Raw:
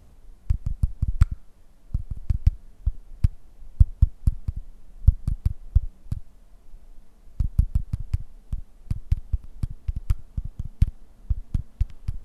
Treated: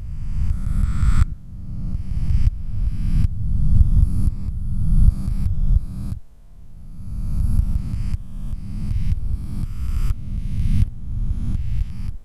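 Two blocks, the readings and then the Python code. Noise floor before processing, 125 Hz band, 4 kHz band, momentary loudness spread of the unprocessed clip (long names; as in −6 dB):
−52 dBFS, +5.0 dB, can't be measured, 13 LU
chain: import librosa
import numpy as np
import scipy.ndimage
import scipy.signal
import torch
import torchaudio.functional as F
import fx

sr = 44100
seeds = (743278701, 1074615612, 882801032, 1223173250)

y = fx.spec_swells(x, sr, rise_s=1.94)
y = y * librosa.db_to_amplitude(-1.0)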